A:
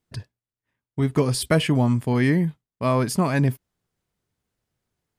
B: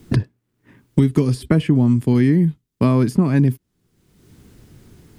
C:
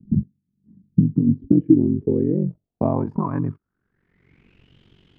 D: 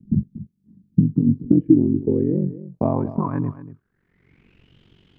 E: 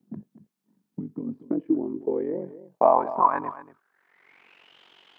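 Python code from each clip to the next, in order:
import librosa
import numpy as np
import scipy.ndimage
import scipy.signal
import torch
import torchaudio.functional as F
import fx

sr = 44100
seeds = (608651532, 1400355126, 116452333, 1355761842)

y1 = fx.low_shelf_res(x, sr, hz=450.0, db=8.5, q=1.5)
y1 = fx.band_squash(y1, sr, depth_pct=100)
y1 = F.gain(torch.from_numpy(y1), -4.0).numpy()
y2 = fx.rider(y1, sr, range_db=10, speed_s=0.5)
y2 = y2 * np.sin(2.0 * np.pi * 23.0 * np.arange(len(y2)) / sr)
y2 = fx.filter_sweep_lowpass(y2, sr, from_hz=200.0, to_hz=3100.0, start_s=1.07, end_s=4.77, q=7.3)
y2 = F.gain(torch.from_numpy(y2), -5.0).numpy()
y3 = y2 + 10.0 ** (-15.0 / 20.0) * np.pad(y2, (int(235 * sr / 1000.0), 0))[:len(y2)]
y4 = fx.highpass_res(y3, sr, hz=810.0, q=1.8)
y4 = F.gain(torch.from_numpy(y4), 6.0).numpy()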